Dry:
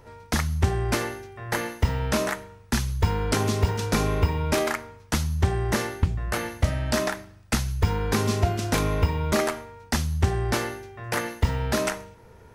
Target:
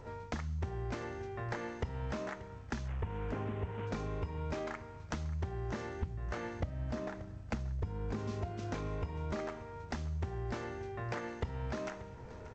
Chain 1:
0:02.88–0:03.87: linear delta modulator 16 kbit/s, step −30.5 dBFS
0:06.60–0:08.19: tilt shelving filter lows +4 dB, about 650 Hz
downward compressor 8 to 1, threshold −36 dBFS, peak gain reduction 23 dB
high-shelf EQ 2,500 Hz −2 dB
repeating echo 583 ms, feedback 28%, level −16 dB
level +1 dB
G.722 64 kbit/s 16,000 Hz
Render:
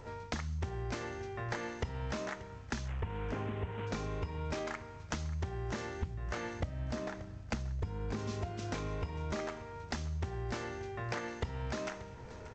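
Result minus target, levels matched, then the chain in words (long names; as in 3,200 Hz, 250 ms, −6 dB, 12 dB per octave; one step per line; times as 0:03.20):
4,000 Hz band +5.0 dB
0:02.88–0:03.87: linear delta modulator 16 kbit/s, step −30.5 dBFS
0:06.60–0:08.19: tilt shelving filter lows +4 dB, about 650 Hz
downward compressor 8 to 1, threshold −36 dBFS, peak gain reduction 23 dB
high-shelf EQ 2,500 Hz −10 dB
repeating echo 583 ms, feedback 28%, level −16 dB
level +1 dB
G.722 64 kbit/s 16,000 Hz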